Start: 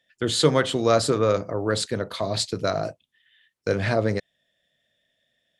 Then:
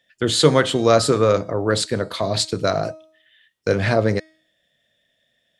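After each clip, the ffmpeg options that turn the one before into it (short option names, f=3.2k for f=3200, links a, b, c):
-af "bandreject=f=316.2:t=h:w=4,bandreject=f=632.4:t=h:w=4,bandreject=f=948.6:t=h:w=4,bandreject=f=1.2648k:t=h:w=4,bandreject=f=1.581k:t=h:w=4,bandreject=f=1.8972k:t=h:w=4,bandreject=f=2.2134k:t=h:w=4,bandreject=f=2.5296k:t=h:w=4,bandreject=f=2.8458k:t=h:w=4,bandreject=f=3.162k:t=h:w=4,bandreject=f=3.4782k:t=h:w=4,bandreject=f=3.7944k:t=h:w=4,bandreject=f=4.1106k:t=h:w=4,bandreject=f=4.4268k:t=h:w=4,bandreject=f=4.743k:t=h:w=4,bandreject=f=5.0592k:t=h:w=4,bandreject=f=5.3754k:t=h:w=4,bandreject=f=5.6916k:t=h:w=4,bandreject=f=6.0078k:t=h:w=4,bandreject=f=6.324k:t=h:w=4,bandreject=f=6.6402k:t=h:w=4,bandreject=f=6.9564k:t=h:w=4,bandreject=f=7.2726k:t=h:w=4,bandreject=f=7.5888k:t=h:w=4,bandreject=f=7.905k:t=h:w=4,bandreject=f=8.2212k:t=h:w=4,bandreject=f=8.5374k:t=h:w=4,bandreject=f=8.8536k:t=h:w=4,bandreject=f=9.1698k:t=h:w=4,bandreject=f=9.486k:t=h:w=4,bandreject=f=9.8022k:t=h:w=4,bandreject=f=10.1184k:t=h:w=4,bandreject=f=10.4346k:t=h:w=4,bandreject=f=10.7508k:t=h:w=4,volume=4.5dB"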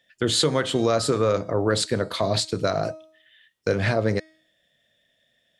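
-af "alimiter=limit=-11dB:level=0:latency=1:release=281"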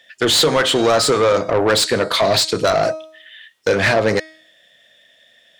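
-filter_complex "[0:a]asplit=2[a][b];[b]highpass=f=720:p=1,volume=18dB,asoftclip=type=tanh:threshold=-10.5dB[c];[a][c]amix=inputs=2:normalize=0,lowpass=f=7k:p=1,volume=-6dB,volume=3.5dB"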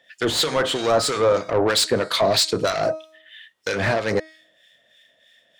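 -filter_complex "[0:a]acrossover=split=1300[a][b];[a]aeval=exprs='val(0)*(1-0.7/2+0.7/2*cos(2*PI*3.1*n/s))':c=same[c];[b]aeval=exprs='val(0)*(1-0.7/2-0.7/2*cos(2*PI*3.1*n/s))':c=same[d];[c][d]amix=inputs=2:normalize=0,volume=-1.5dB"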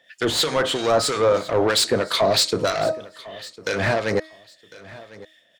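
-af "aecho=1:1:1052|2104:0.106|0.0254"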